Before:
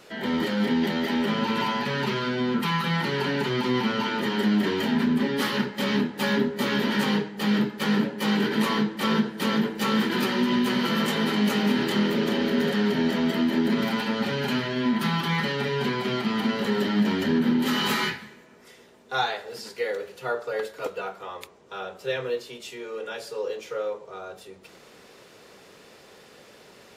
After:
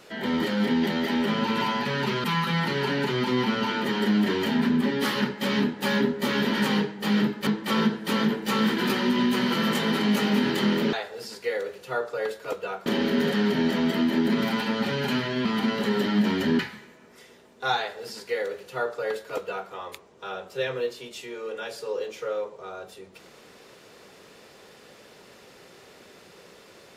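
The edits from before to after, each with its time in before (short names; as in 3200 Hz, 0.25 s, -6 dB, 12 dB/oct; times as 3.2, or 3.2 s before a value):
2.24–2.61 cut
7.84–8.8 cut
14.85–16.26 cut
17.4–18.08 cut
19.27–21.2 copy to 12.26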